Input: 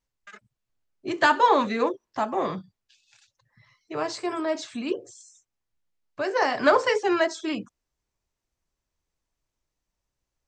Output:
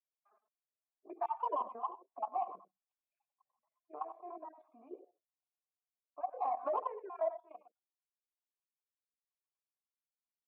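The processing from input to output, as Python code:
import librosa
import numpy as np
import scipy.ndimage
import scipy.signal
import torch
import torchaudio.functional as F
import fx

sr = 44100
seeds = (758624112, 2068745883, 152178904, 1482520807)

p1 = fx.spec_dropout(x, sr, seeds[0], share_pct=34)
p2 = fx.formant_cascade(p1, sr, vowel='a')
p3 = fx.high_shelf(p2, sr, hz=2200.0, db=-3.0)
p4 = 10.0 ** (-32.0 / 20.0) * np.tanh(p3 / 10.0 ** (-32.0 / 20.0))
p5 = p3 + (p4 * 10.0 ** (-11.0 / 20.0))
p6 = scipy.signal.sosfilt(scipy.signal.butter(2, 180.0, 'highpass', fs=sr, output='sos'), p5)
p7 = fx.air_absorb(p6, sr, metres=170.0)
p8 = p7 + 10.0 ** (-12.5 / 20.0) * np.pad(p7, (int(99 * sr / 1000.0), 0))[:len(p7)]
p9 = fx.granulator(p8, sr, seeds[1], grain_ms=240.0, per_s=11.0, spray_ms=19.0, spread_st=0)
p10 = fx.level_steps(p9, sr, step_db=13)
p11 = fx.filter_sweep_highpass(p10, sr, from_hz=290.0, to_hz=1800.0, start_s=6.63, end_s=8.62, q=1.3)
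y = p11 * 10.0 ** (5.0 / 20.0)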